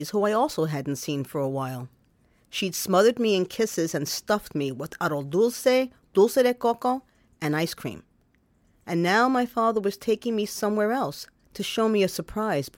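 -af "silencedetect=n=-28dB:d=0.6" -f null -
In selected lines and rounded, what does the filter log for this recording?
silence_start: 1.81
silence_end: 2.55 | silence_duration: 0.73
silence_start: 7.92
silence_end: 8.89 | silence_duration: 0.97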